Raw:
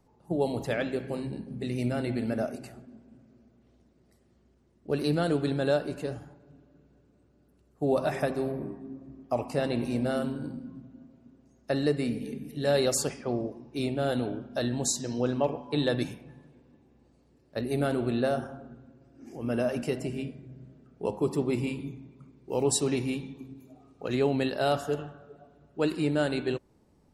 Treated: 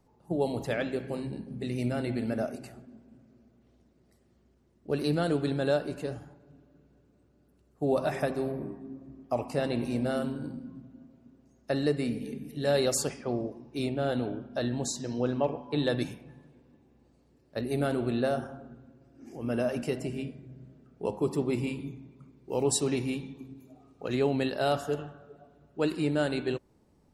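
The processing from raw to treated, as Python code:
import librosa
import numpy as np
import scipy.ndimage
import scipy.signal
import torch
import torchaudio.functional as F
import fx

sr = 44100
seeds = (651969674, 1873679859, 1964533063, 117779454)

y = fx.high_shelf(x, sr, hz=7000.0, db=-10.5, at=(13.89, 15.85))
y = y * 10.0 ** (-1.0 / 20.0)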